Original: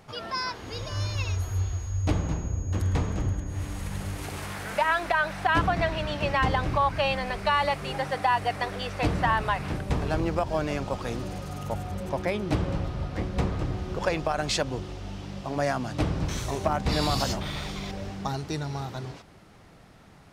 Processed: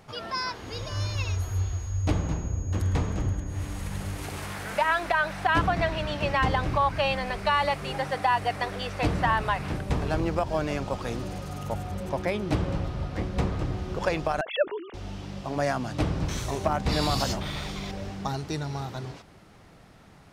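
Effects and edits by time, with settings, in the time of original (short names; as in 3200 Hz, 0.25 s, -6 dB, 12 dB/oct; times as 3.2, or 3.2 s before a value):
14.41–14.94 sine-wave speech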